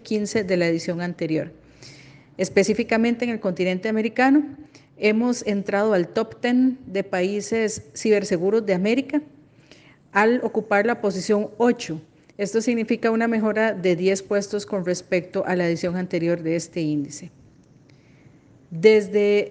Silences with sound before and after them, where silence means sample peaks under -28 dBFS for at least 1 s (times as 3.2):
17.25–18.73